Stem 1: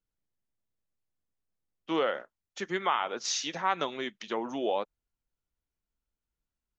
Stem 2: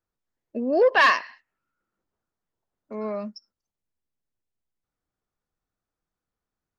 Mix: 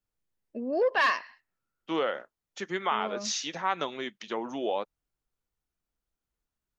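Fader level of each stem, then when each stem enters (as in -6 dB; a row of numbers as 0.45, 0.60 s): -0.5, -7.0 dB; 0.00, 0.00 s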